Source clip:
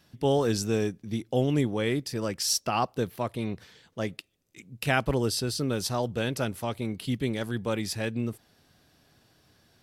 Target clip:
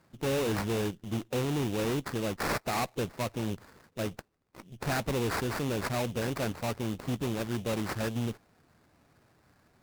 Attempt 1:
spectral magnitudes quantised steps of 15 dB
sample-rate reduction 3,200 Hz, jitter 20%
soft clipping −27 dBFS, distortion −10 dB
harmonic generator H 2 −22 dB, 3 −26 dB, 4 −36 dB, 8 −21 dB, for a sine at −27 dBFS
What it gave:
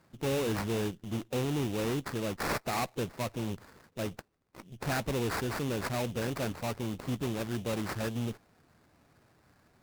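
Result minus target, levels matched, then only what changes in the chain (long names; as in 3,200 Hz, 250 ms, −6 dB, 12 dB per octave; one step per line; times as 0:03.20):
soft clipping: distortion +13 dB
change: soft clipping −16 dBFS, distortion −23 dB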